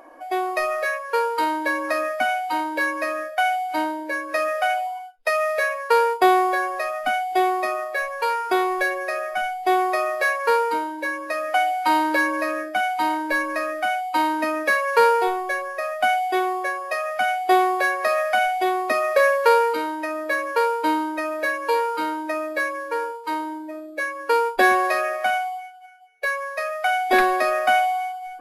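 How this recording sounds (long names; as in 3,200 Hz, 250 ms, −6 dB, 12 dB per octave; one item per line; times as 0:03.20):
background noise floor −36 dBFS
spectral slope −4.5 dB per octave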